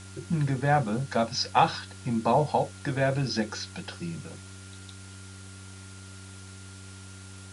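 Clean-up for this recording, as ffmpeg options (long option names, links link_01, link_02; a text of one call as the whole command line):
ffmpeg -i in.wav -af "bandreject=frequency=95.7:width_type=h:width=4,bandreject=frequency=191.4:width_type=h:width=4,bandreject=frequency=287.1:width_type=h:width=4,bandreject=frequency=382.8:width_type=h:width=4,bandreject=frequency=1400:width=30,afwtdn=0.004" out.wav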